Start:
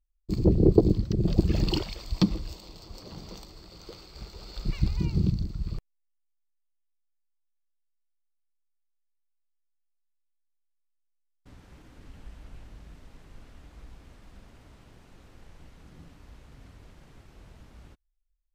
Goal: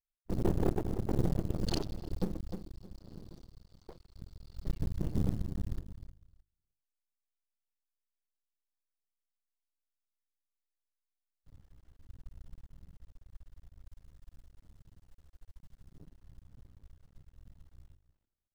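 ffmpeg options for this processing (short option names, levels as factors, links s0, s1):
-filter_complex "[0:a]asettb=1/sr,asplit=3[s0][s1][s2];[s0]atrim=end=13.854[s3];[s1]atrim=start=13.85:end=15.96,asetpts=PTS-STARTPTS,afade=t=in:d=0.004:c=qsin,afade=t=out:st=2.106:d=0.004:c=qsin,highshelf=f=5300:g=9[s4];[s2]atrim=start=15.956[s5];[s3][s4]acrossfade=d=0.004:c1=hsin:c2=qsin[s6];[s6][s5]acrossfade=d=0.004:c1=qsin:c2=hsin,aecho=1:1:308|616|924:0.251|0.0527|0.0111,alimiter=limit=0.178:level=0:latency=1:release=415,afwtdn=0.0141,bandreject=f=50:t=h:w=6,bandreject=f=100:t=h:w=6,bandreject=f=150:t=h:w=6,bandreject=f=200:t=h:w=6,bandreject=f=250:t=h:w=6,bandreject=f=300:t=h:w=6,bandreject=f=350:t=h:w=6,acrusher=bits=7:mode=log:mix=0:aa=0.000001,equalizer=f=2400:w=7.2:g=-6.5,aeval=exprs='max(val(0),0)':c=same"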